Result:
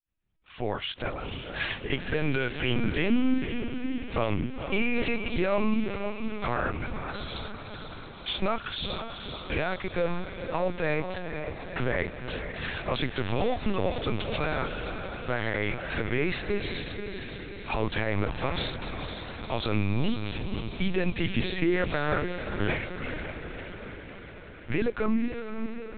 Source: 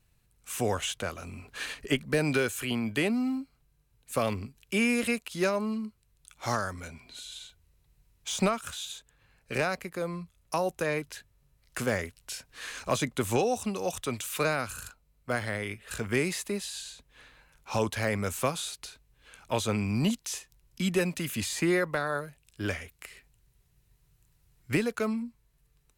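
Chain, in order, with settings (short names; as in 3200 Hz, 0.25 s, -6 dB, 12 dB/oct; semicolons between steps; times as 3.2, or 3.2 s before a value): opening faded in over 1.78 s; limiter -24.5 dBFS, peak gain reduction 9.5 dB; on a send: diffused feedback echo 0.489 s, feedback 63%, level -7 dB; on the sum: LPC vocoder at 8 kHz pitch kept; gain +6.5 dB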